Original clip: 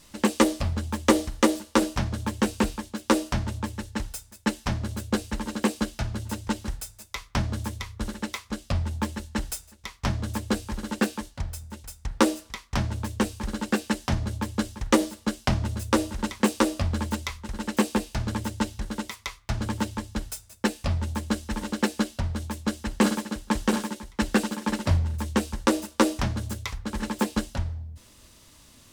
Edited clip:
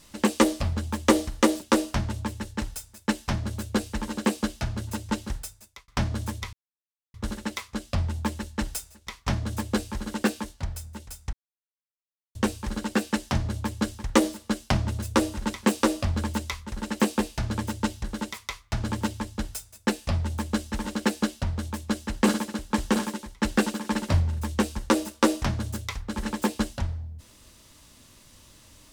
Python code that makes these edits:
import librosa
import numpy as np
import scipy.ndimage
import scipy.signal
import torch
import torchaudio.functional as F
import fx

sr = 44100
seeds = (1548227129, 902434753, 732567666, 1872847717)

y = fx.edit(x, sr, fx.cut(start_s=1.61, length_s=1.38),
    fx.fade_out_span(start_s=6.78, length_s=0.48),
    fx.insert_silence(at_s=7.91, length_s=0.61),
    fx.silence(start_s=12.1, length_s=1.02), tone=tone)